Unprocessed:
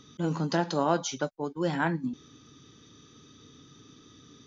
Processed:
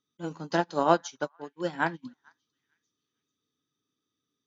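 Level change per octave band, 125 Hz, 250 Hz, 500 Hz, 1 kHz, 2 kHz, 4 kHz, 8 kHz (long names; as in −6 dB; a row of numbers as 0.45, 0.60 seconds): −7.0 dB, −3.5 dB, +1.0 dB, +2.5 dB, +1.5 dB, −3.5 dB, can't be measured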